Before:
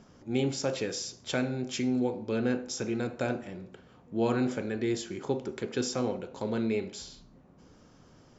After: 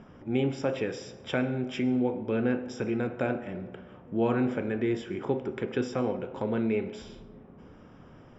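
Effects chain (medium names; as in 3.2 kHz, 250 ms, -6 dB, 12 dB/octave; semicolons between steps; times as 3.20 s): in parallel at -1 dB: compression, threshold -39 dBFS, peak gain reduction 15.5 dB; on the sum: Savitzky-Golay filter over 25 samples; reverberation RT60 2.1 s, pre-delay 75 ms, DRR 17 dB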